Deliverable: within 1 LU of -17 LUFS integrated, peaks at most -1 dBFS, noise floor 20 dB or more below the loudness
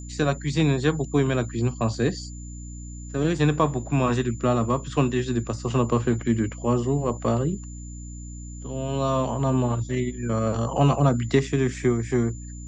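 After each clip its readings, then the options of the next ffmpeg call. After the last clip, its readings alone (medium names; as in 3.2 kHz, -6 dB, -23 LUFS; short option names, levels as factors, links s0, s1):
hum 60 Hz; highest harmonic 300 Hz; hum level -36 dBFS; steady tone 7.1 kHz; tone level -45 dBFS; loudness -24.5 LUFS; peak level -7.0 dBFS; loudness target -17.0 LUFS
-> -af "bandreject=f=60:t=h:w=6,bandreject=f=120:t=h:w=6,bandreject=f=180:t=h:w=6,bandreject=f=240:t=h:w=6,bandreject=f=300:t=h:w=6"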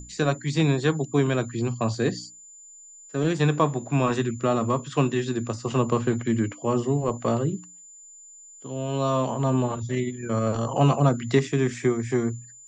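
hum not found; steady tone 7.1 kHz; tone level -45 dBFS
-> -af "bandreject=f=7100:w=30"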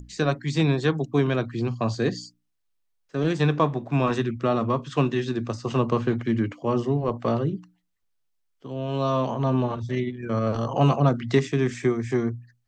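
steady tone not found; loudness -25.0 LUFS; peak level -7.0 dBFS; loudness target -17.0 LUFS
-> -af "volume=2.51,alimiter=limit=0.891:level=0:latency=1"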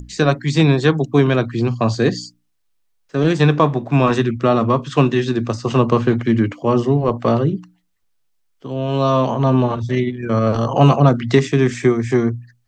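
loudness -17.0 LUFS; peak level -1.0 dBFS; noise floor -64 dBFS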